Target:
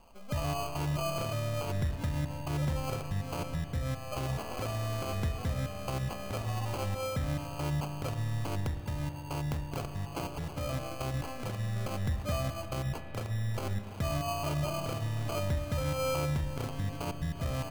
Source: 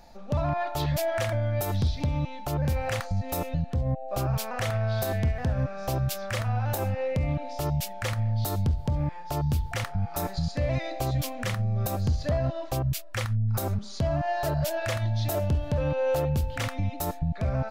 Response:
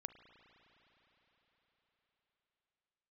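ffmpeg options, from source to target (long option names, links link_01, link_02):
-filter_complex "[0:a]asettb=1/sr,asplit=3[link_01][link_02][link_03];[link_01]atrim=end=8.604[link_04];[link_02]atrim=start=8.6:end=10.73,asetpts=PTS-STARTPTS,afade=type=in:duration=0.004:curve=qsin,afade=type=out:start_time=2.126:duration=0.004:curve=qsin,tiltshelf=frequency=970:gain=-3.5[link_05];[link_03]atrim=start=10.726[link_06];[link_04][link_05]acrossfade=duration=0.004:curve1=hsin:curve2=qsin[link_07];[link_07][link_06]acrossfade=duration=0.004:curve1=qsin:curve2=hsin,acrusher=samples=24:mix=1:aa=0.000001[link_08];[1:a]atrim=start_sample=2205[link_09];[link_08][link_09]afir=irnorm=-1:irlink=0,volume=-1.5dB"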